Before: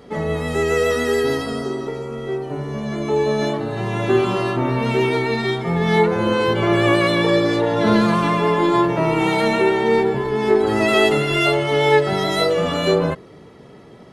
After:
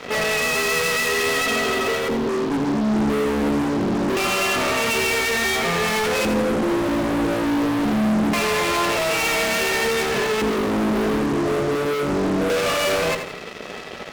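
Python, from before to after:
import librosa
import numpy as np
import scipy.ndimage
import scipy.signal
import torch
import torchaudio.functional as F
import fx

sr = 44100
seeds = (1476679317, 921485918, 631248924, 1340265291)

p1 = scipy.signal.sosfilt(scipy.signal.butter(4, 210.0, 'highpass', fs=sr, output='sos'), x)
p2 = fx.high_shelf(p1, sr, hz=6000.0, db=-10.5)
p3 = p2 + 0.5 * np.pad(p2, (int(1.6 * sr / 1000.0), 0))[:len(p2)]
p4 = fx.dynamic_eq(p3, sr, hz=330.0, q=4.9, threshold_db=-36.0, ratio=4.0, max_db=-5)
p5 = np.clip(10.0 ** (21.0 / 20.0) * p4, -1.0, 1.0) / 10.0 ** (21.0 / 20.0)
p6 = p4 + (p5 * 10.0 ** (-4.0 / 20.0))
p7 = fx.filter_lfo_lowpass(p6, sr, shape='square', hz=0.24, low_hz=290.0, high_hz=2600.0, q=5.7)
p8 = fx.fuzz(p7, sr, gain_db=32.0, gate_db=-40.0)
p9 = p8 + fx.echo_feedback(p8, sr, ms=84, feedback_pct=41, wet_db=-9.0, dry=0)
y = p9 * 10.0 ** (-7.5 / 20.0)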